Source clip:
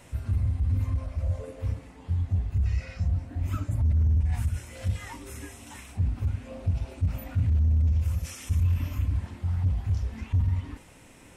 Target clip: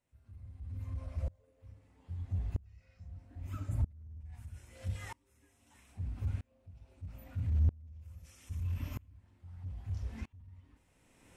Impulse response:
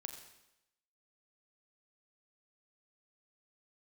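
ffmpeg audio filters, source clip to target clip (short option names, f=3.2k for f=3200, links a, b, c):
-filter_complex "[0:a]asplit=2[a][b];[1:a]atrim=start_sample=2205[c];[b][c]afir=irnorm=-1:irlink=0,volume=-1.5dB[d];[a][d]amix=inputs=2:normalize=0,aeval=exprs='val(0)*pow(10,-30*if(lt(mod(-0.78*n/s,1),2*abs(-0.78)/1000),1-mod(-0.78*n/s,1)/(2*abs(-0.78)/1000),(mod(-0.78*n/s,1)-2*abs(-0.78)/1000)/(1-2*abs(-0.78)/1000))/20)':c=same,volume=-8dB"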